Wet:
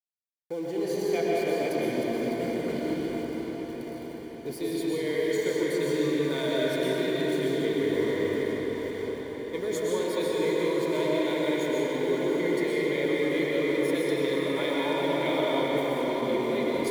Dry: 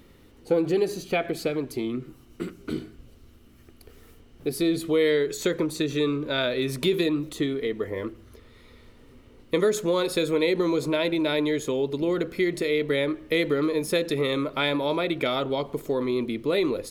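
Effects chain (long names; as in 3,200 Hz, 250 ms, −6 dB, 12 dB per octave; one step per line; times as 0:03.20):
delay that plays each chunk backwards 468 ms, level −11 dB
downward expander −47 dBFS
reversed playback
downward compressor, threshold −31 dBFS, peak gain reduction 13 dB
reversed playback
centre clipping without the shift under −44.5 dBFS
notch comb filter 1,300 Hz
hollow resonant body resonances 950/2,100 Hz, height 7 dB, ringing for 30 ms
on a send: feedback delay with all-pass diffusion 621 ms, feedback 63%, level −9 dB
on the sum: comb and all-pass reverb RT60 4.5 s, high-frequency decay 0.5×, pre-delay 85 ms, DRR −5.5 dB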